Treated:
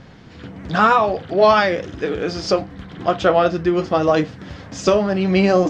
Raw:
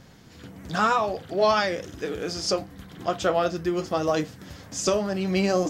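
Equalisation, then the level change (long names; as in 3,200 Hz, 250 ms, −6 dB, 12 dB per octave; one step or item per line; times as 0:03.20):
low-pass filter 3,600 Hz 12 dB per octave
+8.0 dB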